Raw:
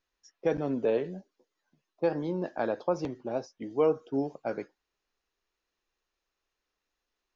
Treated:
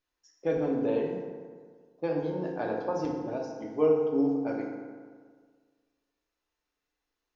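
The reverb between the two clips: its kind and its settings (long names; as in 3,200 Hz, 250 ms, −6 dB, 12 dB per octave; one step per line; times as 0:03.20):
feedback delay network reverb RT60 1.7 s, low-frequency decay 1×, high-frequency decay 0.55×, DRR −1 dB
level −4.5 dB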